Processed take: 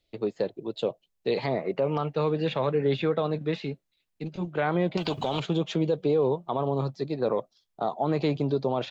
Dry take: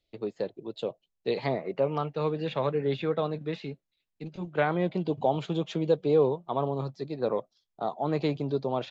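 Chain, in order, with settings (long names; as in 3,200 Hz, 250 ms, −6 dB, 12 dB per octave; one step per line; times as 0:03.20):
brickwall limiter −20.5 dBFS, peak gain reduction 8 dB
0:04.97–0:05.40: every bin compressed towards the loudest bin 2 to 1
level +4.5 dB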